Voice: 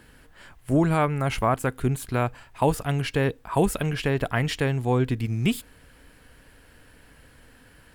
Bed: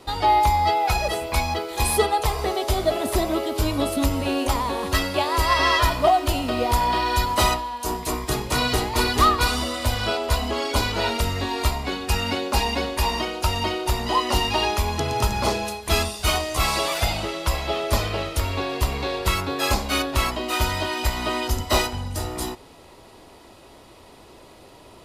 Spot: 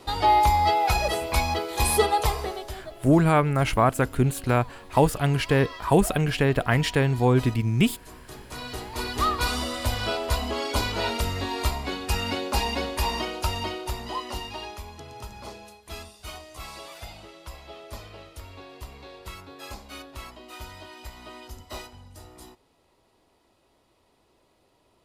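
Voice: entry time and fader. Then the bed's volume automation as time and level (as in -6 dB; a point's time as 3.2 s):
2.35 s, +2.5 dB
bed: 2.29 s -1 dB
2.93 s -21 dB
8.1 s -21 dB
9.55 s -3.5 dB
13.37 s -3.5 dB
14.99 s -18 dB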